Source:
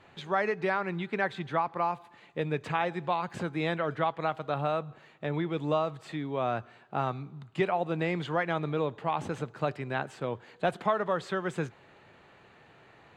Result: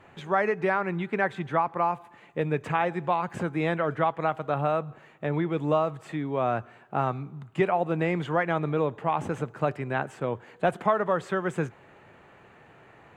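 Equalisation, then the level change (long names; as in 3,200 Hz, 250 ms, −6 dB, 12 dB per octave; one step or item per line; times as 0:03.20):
parametric band 4,200 Hz −10 dB 0.88 octaves
+4.0 dB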